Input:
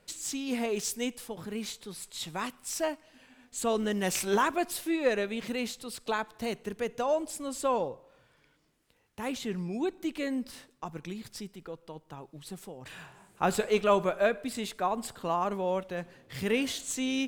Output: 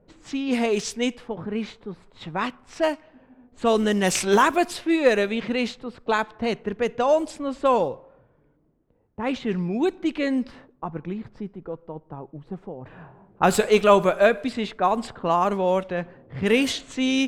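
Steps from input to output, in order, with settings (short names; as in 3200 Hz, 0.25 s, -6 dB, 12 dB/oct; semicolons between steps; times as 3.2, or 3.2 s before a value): low-pass opened by the level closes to 560 Hz, open at -25 dBFS; gain +8.5 dB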